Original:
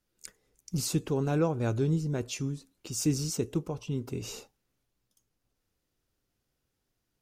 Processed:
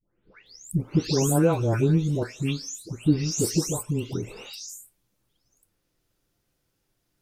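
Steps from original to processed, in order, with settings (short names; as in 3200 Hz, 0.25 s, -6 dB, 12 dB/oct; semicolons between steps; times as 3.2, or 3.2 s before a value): spectral delay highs late, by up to 0.46 s; gain +7 dB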